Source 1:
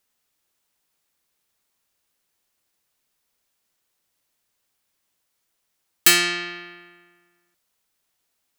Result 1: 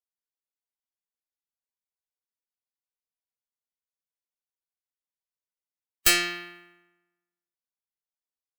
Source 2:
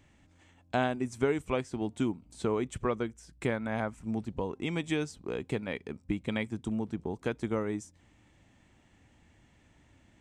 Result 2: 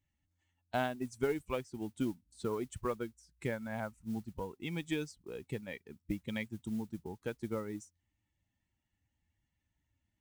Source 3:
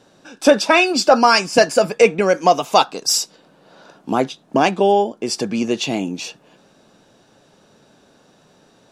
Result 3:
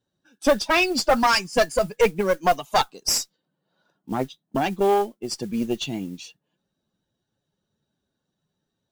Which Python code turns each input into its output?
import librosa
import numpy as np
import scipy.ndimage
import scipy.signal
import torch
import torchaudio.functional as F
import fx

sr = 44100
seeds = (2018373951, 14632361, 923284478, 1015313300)

y = fx.bin_expand(x, sr, power=1.5)
y = fx.tube_stage(y, sr, drive_db=11.0, bias=0.6)
y = fx.mod_noise(y, sr, seeds[0], snr_db=25)